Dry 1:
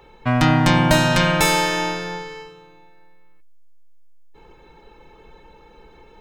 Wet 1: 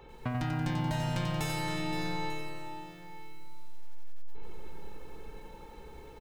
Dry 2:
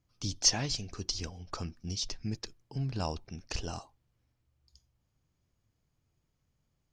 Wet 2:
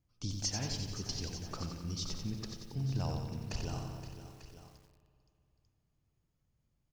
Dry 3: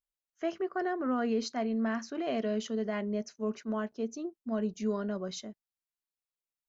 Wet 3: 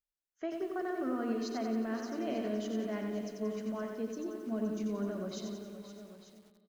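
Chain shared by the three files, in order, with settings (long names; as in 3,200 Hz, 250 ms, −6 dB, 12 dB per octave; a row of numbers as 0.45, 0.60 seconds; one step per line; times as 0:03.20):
low-shelf EQ 440 Hz +5 dB
downward compressor 8 to 1, threshold −26 dBFS
on a send: multi-tap delay 520/894 ms −12.5/−14.5 dB
on the sum: spring reverb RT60 2.8 s, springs 60 ms, chirp 20 ms, DRR 10 dB
feedback echo at a low word length 90 ms, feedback 55%, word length 9 bits, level −5 dB
level −6 dB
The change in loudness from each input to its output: −16.5, −5.0, −3.0 LU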